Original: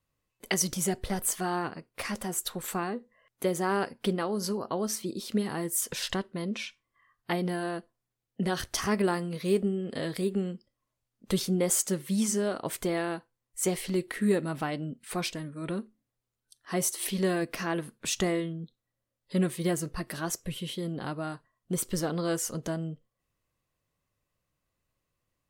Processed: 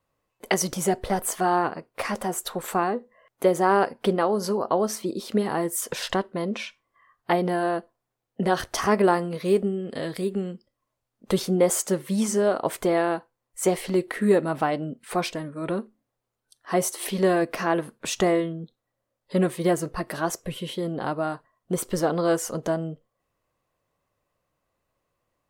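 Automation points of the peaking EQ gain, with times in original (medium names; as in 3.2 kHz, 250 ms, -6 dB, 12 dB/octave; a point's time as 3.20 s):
peaking EQ 710 Hz 2.5 oct
9.20 s +11 dB
9.89 s +4 dB
10.54 s +4 dB
11.36 s +10.5 dB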